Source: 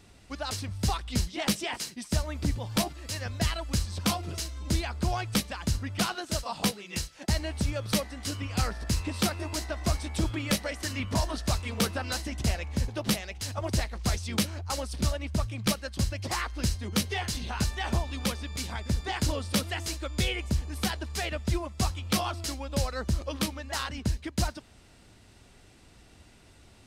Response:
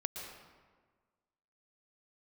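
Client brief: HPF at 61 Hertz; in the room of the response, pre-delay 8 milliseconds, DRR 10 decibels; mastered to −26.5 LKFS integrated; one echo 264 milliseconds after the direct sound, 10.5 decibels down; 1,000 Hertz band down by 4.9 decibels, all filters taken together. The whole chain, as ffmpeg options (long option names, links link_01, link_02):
-filter_complex "[0:a]highpass=61,equalizer=frequency=1000:width_type=o:gain=-7,aecho=1:1:264:0.299,asplit=2[link_01][link_02];[1:a]atrim=start_sample=2205,adelay=8[link_03];[link_02][link_03]afir=irnorm=-1:irlink=0,volume=-11dB[link_04];[link_01][link_04]amix=inputs=2:normalize=0,volume=5dB"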